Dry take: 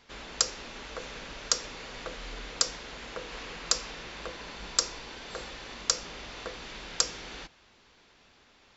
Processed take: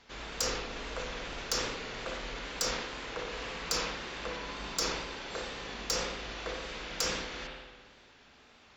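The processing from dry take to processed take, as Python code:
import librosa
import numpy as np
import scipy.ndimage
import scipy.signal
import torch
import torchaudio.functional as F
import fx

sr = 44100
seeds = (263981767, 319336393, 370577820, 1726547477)

y = fx.tube_stage(x, sr, drive_db=24.0, bias=0.2)
y = fx.rev_spring(y, sr, rt60_s=1.6, pass_ms=(57,), chirp_ms=65, drr_db=1.5)
y = fx.wow_flutter(y, sr, seeds[0], rate_hz=2.1, depth_cents=43.0)
y = fx.sustainer(y, sr, db_per_s=43.0)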